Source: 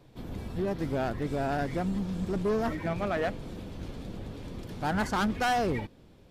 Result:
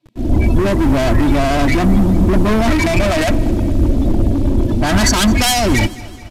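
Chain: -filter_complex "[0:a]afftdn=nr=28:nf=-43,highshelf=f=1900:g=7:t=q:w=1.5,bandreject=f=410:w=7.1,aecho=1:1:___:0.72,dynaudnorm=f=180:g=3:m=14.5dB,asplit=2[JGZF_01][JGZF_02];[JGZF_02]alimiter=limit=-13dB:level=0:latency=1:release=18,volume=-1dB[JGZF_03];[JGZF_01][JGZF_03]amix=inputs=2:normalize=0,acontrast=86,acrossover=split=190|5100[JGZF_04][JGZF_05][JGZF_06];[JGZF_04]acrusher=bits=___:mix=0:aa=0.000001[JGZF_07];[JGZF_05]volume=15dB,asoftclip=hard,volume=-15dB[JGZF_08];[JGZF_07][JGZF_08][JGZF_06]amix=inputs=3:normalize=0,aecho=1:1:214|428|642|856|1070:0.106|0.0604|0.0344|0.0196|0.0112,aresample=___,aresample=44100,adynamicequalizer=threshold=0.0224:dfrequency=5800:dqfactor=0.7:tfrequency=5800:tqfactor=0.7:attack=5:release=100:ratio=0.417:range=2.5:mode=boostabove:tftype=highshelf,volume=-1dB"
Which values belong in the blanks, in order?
3.1, 6, 32000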